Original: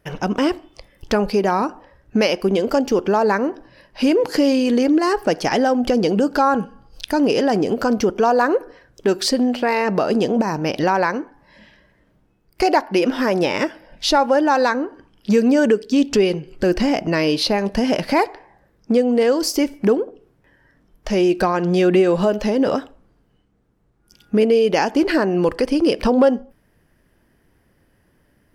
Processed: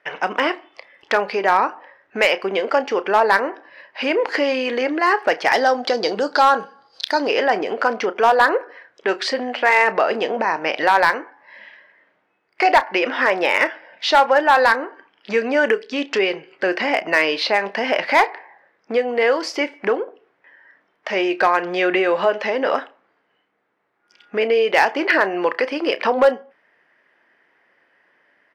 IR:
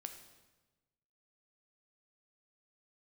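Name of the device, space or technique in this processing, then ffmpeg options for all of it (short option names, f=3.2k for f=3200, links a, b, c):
megaphone: -filter_complex "[0:a]asettb=1/sr,asplit=3[a][b][c];[a]atrim=end=5.534[d];[b]atrim=start=5.53:end=7.29,asetpts=PTS-STARTPTS,afade=t=in:d=0.004:c=qsin,afade=t=out:st=1.756:d=0.004:c=qsin,highshelf=f=3.3k:t=q:w=3:g=6.5[e];[c]atrim=start=7.286[f];[d][e]acrossfade=d=0.004:c1=hsin:c2=qsin[g];[g][f]acrossfade=d=0.004:c1=qsin:c2=hsin,highpass=660,lowpass=2.9k,equalizer=f=2k:t=o:w=0.58:g=6.5,asoftclip=type=hard:threshold=-11.5dB,asplit=2[h][i];[i]adelay=31,volume=-14dB[j];[h][j]amix=inputs=2:normalize=0,volume=5dB"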